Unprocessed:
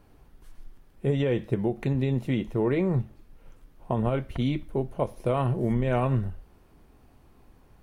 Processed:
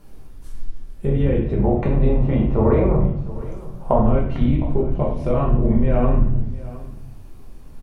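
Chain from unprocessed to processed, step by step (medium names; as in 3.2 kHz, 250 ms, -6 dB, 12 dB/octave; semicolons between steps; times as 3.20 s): octave divider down 2 oct, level -1 dB; tone controls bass +3 dB, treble +8 dB; compression 2.5:1, threshold -23 dBFS, peak gain reduction 5.5 dB; 1.59–4.04 s: high-order bell 810 Hz +9.5 dB; low-pass that closes with the level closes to 2 kHz, closed at -24 dBFS; delay 710 ms -18 dB; simulated room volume 140 m³, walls mixed, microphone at 1.2 m; trim +2 dB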